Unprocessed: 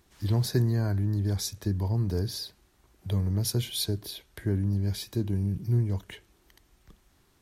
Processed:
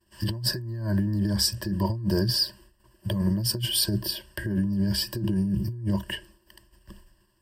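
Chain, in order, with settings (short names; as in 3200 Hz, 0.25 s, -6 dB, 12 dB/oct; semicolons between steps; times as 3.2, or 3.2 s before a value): expander -55 dBFS; ripple EQ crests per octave 1.3, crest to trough 17 dB; negative-ratio compressor -28 dBFS, ratio -1; gain +1.5 dB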